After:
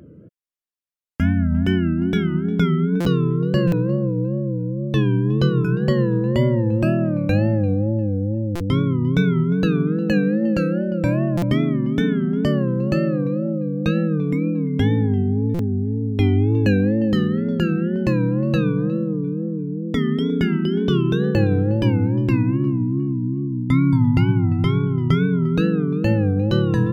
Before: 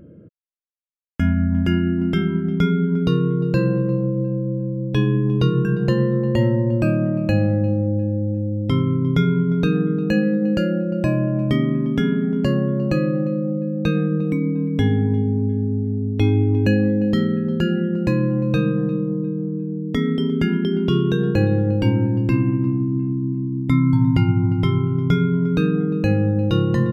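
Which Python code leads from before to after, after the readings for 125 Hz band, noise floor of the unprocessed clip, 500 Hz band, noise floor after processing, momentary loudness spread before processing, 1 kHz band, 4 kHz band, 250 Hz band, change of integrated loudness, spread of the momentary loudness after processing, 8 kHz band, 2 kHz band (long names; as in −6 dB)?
0.0 dB, −26 dBFS, 0.0 dB, −26 dBFS, 5 LU, 0.0 dB, 0.0 dB, 0.0 dB, 0.0 dB, 4 LU, can't be measured, +0.5 dB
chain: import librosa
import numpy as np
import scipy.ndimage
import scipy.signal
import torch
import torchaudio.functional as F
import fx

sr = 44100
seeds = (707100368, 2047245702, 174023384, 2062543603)

y = fx.wow_flutter(x, sr, seeds[0], rate_hz=2.1, depth_cents=120.0)
y = fx.buffer_glitch(y, sr, at_s=(3.0, 3.67, 8.55, 11.37, 15.54), block=256, repeats=8)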